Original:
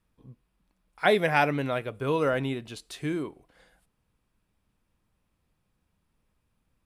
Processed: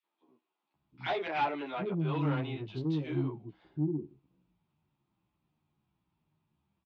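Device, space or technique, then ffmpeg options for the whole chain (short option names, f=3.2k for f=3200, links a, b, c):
barber-pole flanger into a guitar amplifier: -filter_complex "[0:a]acrossover=split=360|1800[a][b][c];[b]adelay=30[d];[a]adelay=740[e];[e][d][c]amix=inputs=3:normalize=0,asplit=2[f][g];[g]adelay=11.7,afreqshift=-1.2[h];[f][h]amix=inputs=2:normalize=1,asoftclip=type=tanh:threshold=-27dB,highpass=91,equalizer=f=150:t=q:w=4:g=8,equalizer=f=340:t=q:w=4:g=9,equalizer=f=500:t=q:w=4:g=-9,equalizer=f=870:t=q:w=4:g=5,equalizer=f=1.7k:t=q:w=4:g=-5,lowpass=f=3.9k:w=0.5412,lowpass=f=3.9k:w=1.3066"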